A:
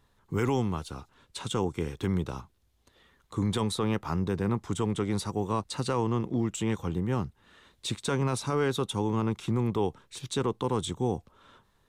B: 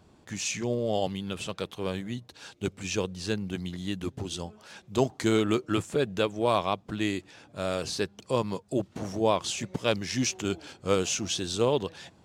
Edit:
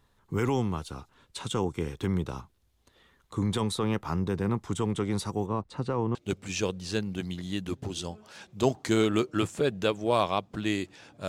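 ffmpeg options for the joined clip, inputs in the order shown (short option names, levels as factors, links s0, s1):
-filter_complex "[0:a]asettb=1/sr,asplit=3[s0][s1][s2];[s0]atrim=end=5.464[s3];[s1]atrim=start=5.46:end=6.15,asetpts=PTS-STARTPTS,afade=t=in:d=0.004:c=qsin,afade=t=out:st=0.686:d=0.004:c=qsin,lowpass=f=1100:p=1[s4];[s2]atrim=start=6.146[s5];[s3][s4]acrossfade=d=0.004:c1=hsin:c2=qsin[s6];[s6][s5]acrossfade=d=0.004:c1=qsin:c2=hsin,apad=whole_dur=11.28,atrim=end=11.28,atrim=end=6.152[s7];[1:a]atrim=start=2.498:end=7.63[s8];[s7][s8]acrossfade=d=0.004:c1=hsin:c2=hsin"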